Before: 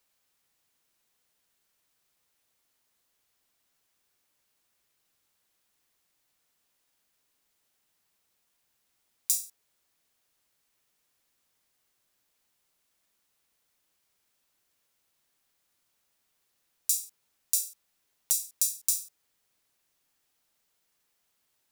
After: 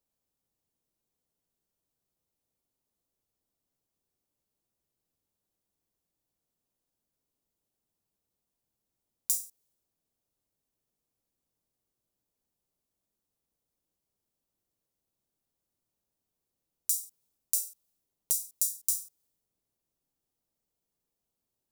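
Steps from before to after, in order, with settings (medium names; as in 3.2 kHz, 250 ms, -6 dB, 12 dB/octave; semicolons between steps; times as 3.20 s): peaking EQ 1.8 kHz -15 dB 2.5 oct; tape noise reduction on one side only decoder only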